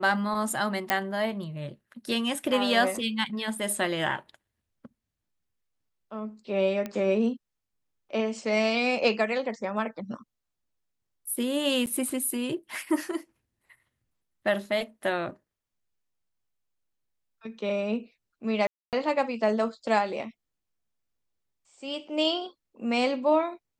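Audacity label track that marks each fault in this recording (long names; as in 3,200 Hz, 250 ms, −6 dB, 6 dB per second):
0.900000	0.900000	click −8 dBFS
6.860000	6.860000	click −19 dBFS
11.860000	11.870000	drop-out 9.9 ms
18.670000	18.930000	drop-out 258 ms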